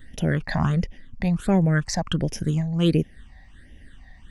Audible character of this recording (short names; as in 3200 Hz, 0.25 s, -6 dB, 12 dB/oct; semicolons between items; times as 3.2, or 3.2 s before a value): phasing stages 8, 1.4 Hz, lowest notch 390–1300 Hz